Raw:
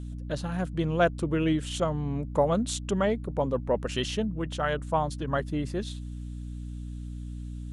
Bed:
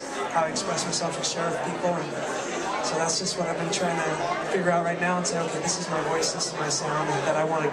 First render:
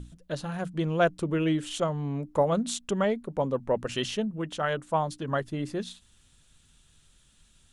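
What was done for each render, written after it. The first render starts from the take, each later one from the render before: notches 60/120/180/240/300 Hz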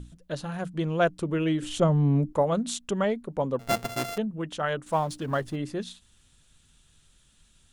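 1.62–2.33 low shelf 420 Hz +11.5 dB; 3.59–4.18 sample sorter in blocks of 64 samples; 4.86–5.56 G.711 law mismatch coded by mu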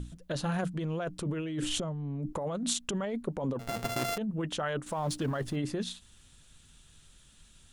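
limiter -20.5 dBFS, peak gain reduction 10.5 dB; negative-ratio compressor -32 dBFS, ratio -1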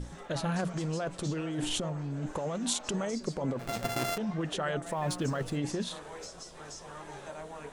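add bed -19 dB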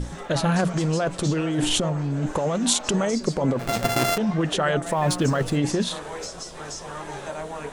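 gain +10 dB

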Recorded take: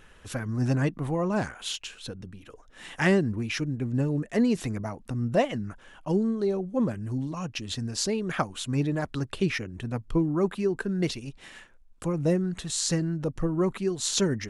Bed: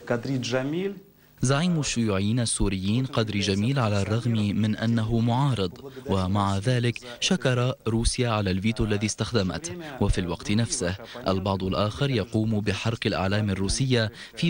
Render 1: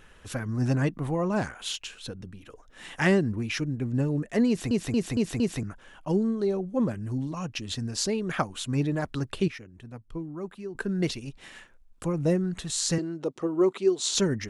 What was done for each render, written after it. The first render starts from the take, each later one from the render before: 4.48 stutter in place 0.23 s, 5 plays; 9.48–10.75 gain -11 dB; 12.98–14.15 speaker cabinet 310–9100 Hz, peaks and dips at 380 Hz +8 dB, 1700 Hz -6 dB, 3600 Hz +4 dB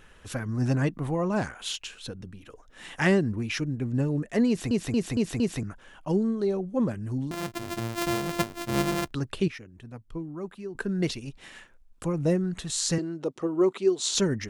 7.31–9.11 sample sorter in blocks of 128 samples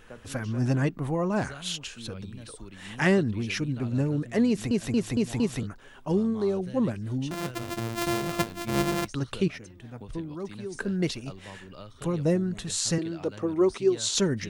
add bed -20 dB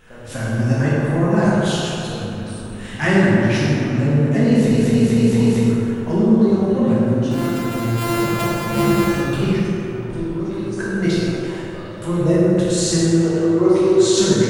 on a send: dark delay 0.102 s, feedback 77%, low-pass 1900 Hz, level -5.5 dB; on the sum: plate-style reverb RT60 1.9 s, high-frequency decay 0.65×, DRR -7.5 dB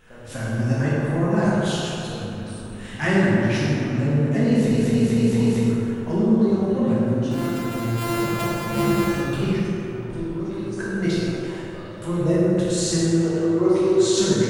gain -4 dB

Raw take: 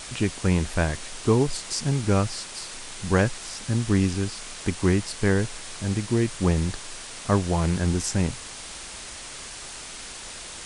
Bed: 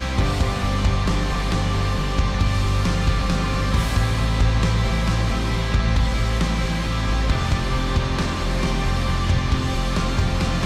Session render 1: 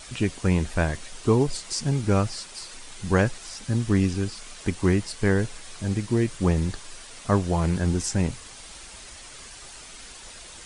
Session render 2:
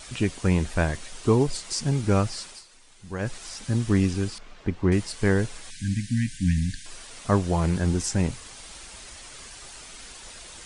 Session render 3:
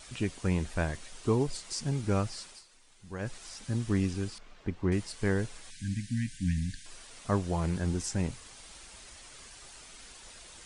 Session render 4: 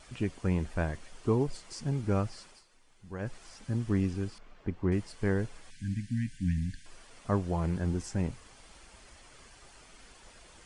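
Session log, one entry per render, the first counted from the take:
denoiser 7 dB, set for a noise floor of -39 dBFS
2.48–3.34 dip -12.5 dB, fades 0.15 s; 4.38–4.92 tape spacing loss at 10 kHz 28 dB; 5.7–6.86 brick-wall FIR band-stop 300–1500 Hz
gain -7 dB
high shelf 2800 Hz -9.5 dB; notch 3800 Hz, Q 19

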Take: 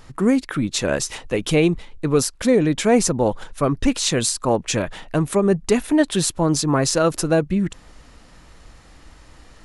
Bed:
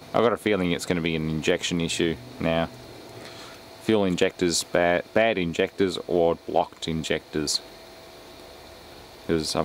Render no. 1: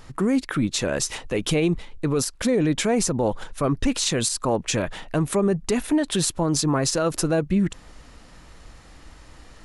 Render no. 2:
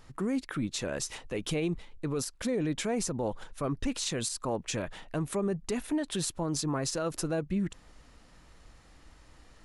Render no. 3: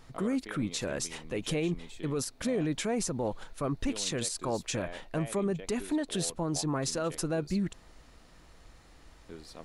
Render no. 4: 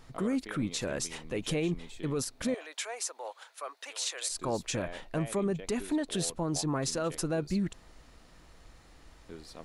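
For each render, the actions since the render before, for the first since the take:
limiter -13 dBFS, peak gain reduction 9.5 dB
gain -9.5 dB
add bed -23 dB
2.54–4.3 Bessel high-pass 860 Hz, order 6

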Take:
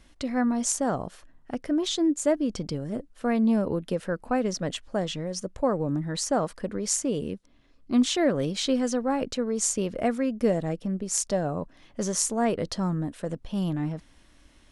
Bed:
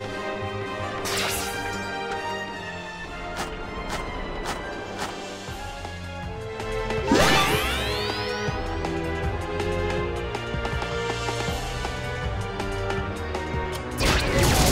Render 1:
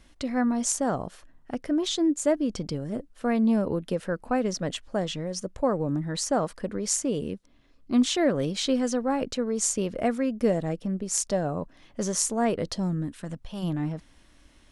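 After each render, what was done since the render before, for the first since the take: 12.74–13.62 bell 1500 Hz -> 220 Hz -13 dB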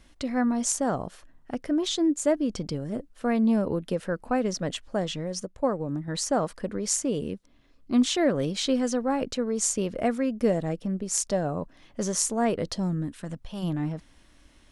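5.45–6.08 upward expander, over -34 dBFS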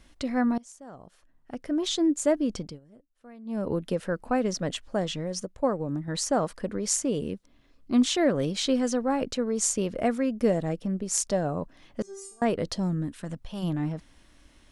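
0.58–1.91 fade in quadratic, from -23 dB; 2.53–3.72 dip -22.5 dB, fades 0.27 s; 12.02–12.42 metallic resonator 390 Hz, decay 0.61 s, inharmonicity 0.002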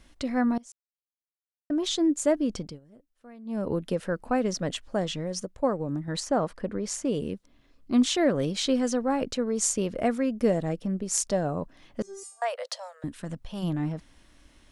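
0.72–1.7 mute; 6.2–7.05 high shelf 4500 Hz -10.5 dB; 12.23–13.04 steep high-pass 510 Hz 96 dB/oct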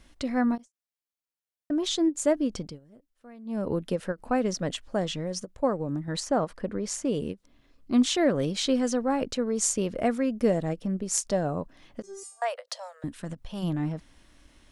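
ending taper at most 460 dB/s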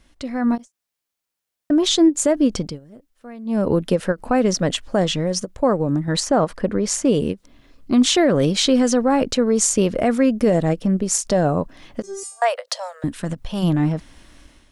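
limiter -18 dBFS, peak gain reduction 10 dB; AGC gain up to 10.5 dB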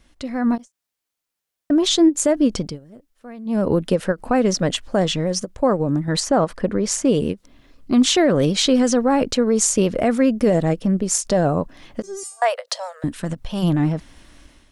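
vibrato 12 Hz 35 cents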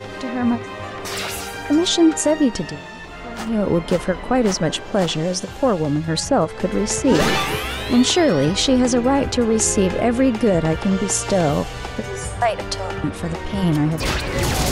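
add bed -0.5 dB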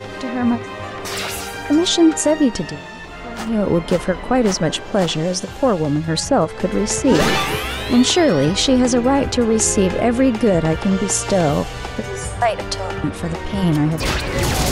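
gain +1.5 dB

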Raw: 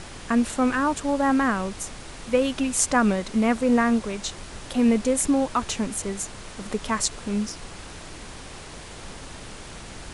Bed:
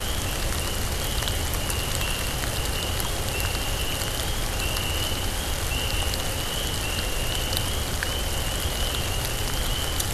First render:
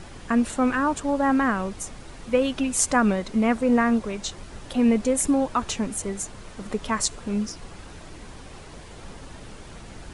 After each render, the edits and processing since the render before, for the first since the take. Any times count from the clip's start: denoiser 7 dB, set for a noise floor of -41 dBFS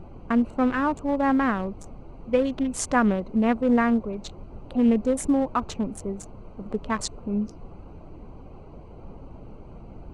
Wiener smoothing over 25 samples; high shelf 6400 Hz -12 dB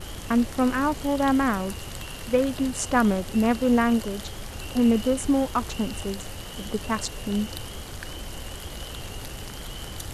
add bed -11 dB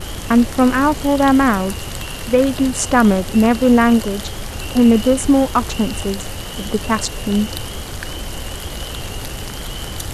gain +9 dB; limiter -3 dBFS, peak gain reduction 2.5 dB

